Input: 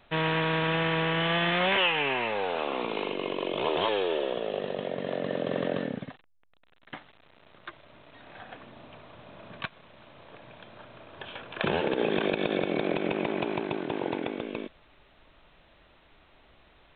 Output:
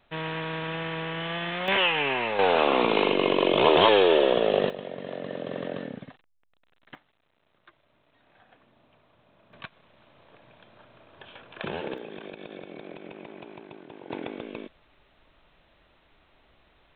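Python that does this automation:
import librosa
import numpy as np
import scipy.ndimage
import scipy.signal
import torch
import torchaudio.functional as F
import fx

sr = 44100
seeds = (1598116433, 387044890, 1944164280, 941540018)

y = fx.gain(x, sr, db=fx.steps((0.0, -5.5), (1.68, 1.5), (2.39, 9.0), (4.7, -4.0), (6.95, -13.5), (9.53, -6.0), (11.98, -14.0), (14.1, -3.0)))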